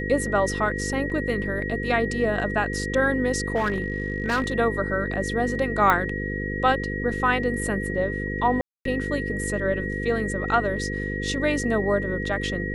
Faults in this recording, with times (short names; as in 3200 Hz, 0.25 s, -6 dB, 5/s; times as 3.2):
buzz 50 Hz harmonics 10 -30 dBFS
tone 1900 Hz -31 dBFS
1.1 gap 3.5 ms
3.55–4.53 clipped -19 dBFS
5.9 pop -8 dBFS
8.61–8.85 gap 0.243 s